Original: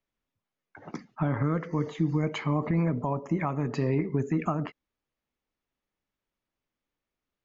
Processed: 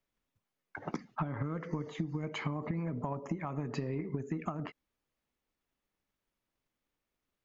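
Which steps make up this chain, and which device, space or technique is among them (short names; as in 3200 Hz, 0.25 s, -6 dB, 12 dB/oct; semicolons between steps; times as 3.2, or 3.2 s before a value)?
drum-bus smash (transient shaper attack +7 dB, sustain +1 dB; compressor 12:1, threshold -31 dBFS, peak gain reduction 16 dB; soft clip -21.5 dBFS, distortion -22 dB)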